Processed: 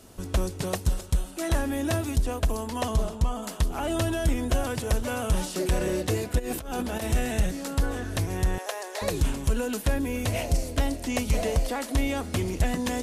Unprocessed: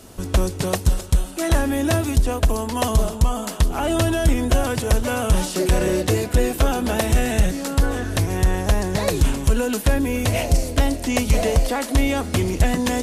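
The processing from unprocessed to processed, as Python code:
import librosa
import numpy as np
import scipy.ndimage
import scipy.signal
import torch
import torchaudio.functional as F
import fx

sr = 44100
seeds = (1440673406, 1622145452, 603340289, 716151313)

y = fx.high_shelf(x, sr, hz=fx.line((2.76, 11000.0), (3.42, 6600.0)), db=-9.0, at=(2.76, 3.42), fade=0.02)
y = fx.over_compress(y, sr, threshold_db=-25.0, ratio=-1.0, at=(6.38, 7.06), fade=0.02)
y = fx.cheby2_highpass(y, sr, hz=180.0, order=4, stop_db=50, at=(8.58, 9.02))
y = F.gain(torch.from_numpy(y), -7.0).numpy()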